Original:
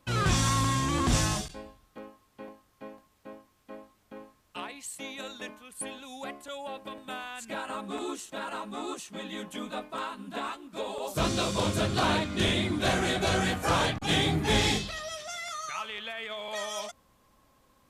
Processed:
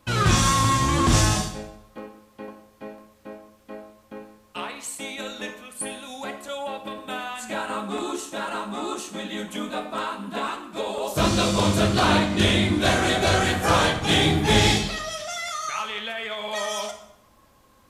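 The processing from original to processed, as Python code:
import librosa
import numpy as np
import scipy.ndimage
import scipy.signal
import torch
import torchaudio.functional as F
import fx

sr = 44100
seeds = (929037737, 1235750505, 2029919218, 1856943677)

y = fx.rev_plate(x, sr, seeds[0], rt60_s=0.78, hf_ratio=0.8, predelay_ms=0, drr_db=5.0)
y = y * librosa.db_to_amplitude(5.5)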